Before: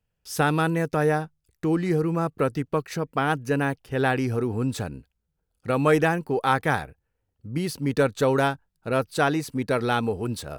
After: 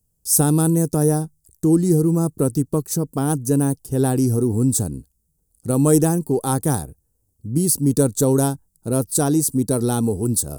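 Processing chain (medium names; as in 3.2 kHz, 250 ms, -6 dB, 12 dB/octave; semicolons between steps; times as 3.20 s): FFT filter 330 Hz 0 dB, 560 Hz -9 dB, 980 Hz -11 dB, 2.2 kHz -26 dB, 8.5 kHz +14 dB, 14 kHz +11 dB; trim +8 dB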